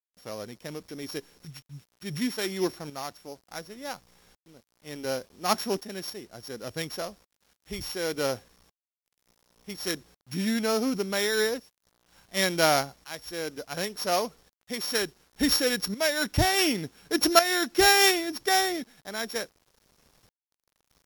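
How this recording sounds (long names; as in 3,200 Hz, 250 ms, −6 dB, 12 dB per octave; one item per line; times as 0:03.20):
a buzz of ramps at a fixed pitch in blocks of 8 samples
tremolo saw up 0.69 Hz, depth 70%
a quantiser's noise floor 10 bits, dither none
Ogg Vorbis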